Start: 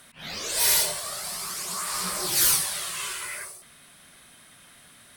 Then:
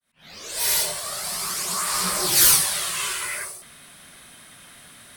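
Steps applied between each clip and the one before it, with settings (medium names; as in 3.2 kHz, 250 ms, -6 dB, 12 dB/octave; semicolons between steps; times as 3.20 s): fade-in on the opening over 1.47 s; trim +5.5 dB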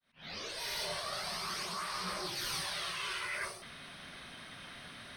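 Savitzky-Golay filter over 15 samples; reverse; compression 12:1, threshold -35 dBFS, peak gain reduction 16.5 dB; reverse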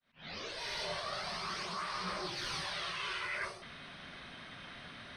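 distance through air 92 m; trim +1 dB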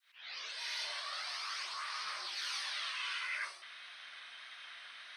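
high-pass 1.4 kHz 12 dB/octave; vibrato 1.6 Hz 26 cents; tape noise reduction on one side only encoder only; trim +1 dB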